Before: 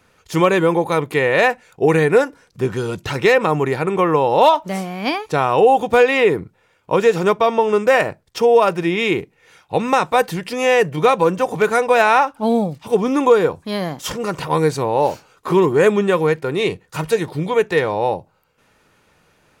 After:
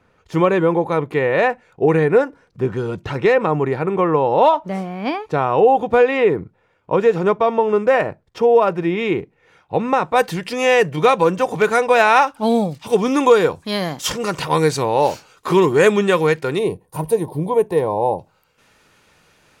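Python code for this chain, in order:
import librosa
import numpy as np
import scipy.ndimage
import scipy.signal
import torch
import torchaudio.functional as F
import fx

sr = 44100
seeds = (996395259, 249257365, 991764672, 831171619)

y = fx.high_shelf(x, sr, hz=2500.0, db=fx.steps((0.0, -10.5), (10.15, 3.5), (12.15, 9.0)))
y = fx.spec_box(y, sr, start_s=16.58, length_s=1.61, low_hz=1100.0, high_hz=8500.0, gain_db=-17)
y = fx.high_shelf(y, sr, hz=8400.0, db=-8.5)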